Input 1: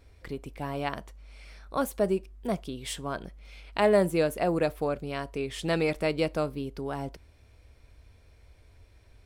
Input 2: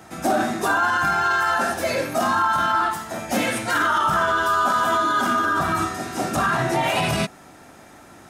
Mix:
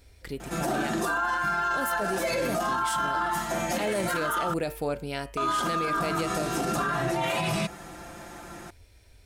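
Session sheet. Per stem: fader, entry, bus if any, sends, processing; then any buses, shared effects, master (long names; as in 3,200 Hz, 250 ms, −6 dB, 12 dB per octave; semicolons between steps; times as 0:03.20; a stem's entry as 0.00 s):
+0.5 dB, 0.00 s, no send, high-shelf EQ 3,700 Hz +10 dB; notch filter 1,100 Hz, Q 7.9; hum removal 113.4 Hz, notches 29
+1.0 dB, 0.40 s, muted 0:04.54–0:05.37, no send, comb filter 5.8 ms, depth 78%; brickwall limiter −17 dBFS, peak gain reduction 10.5 dB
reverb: not used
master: brickwall limiter −19.5 dBFS, peak gain reduction 11.5 dB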